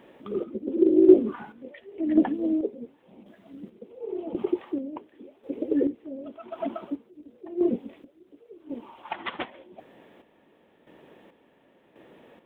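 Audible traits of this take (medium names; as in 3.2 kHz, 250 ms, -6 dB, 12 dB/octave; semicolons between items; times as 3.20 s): chopped level 0.92 Hz, depth 60%, duty 40%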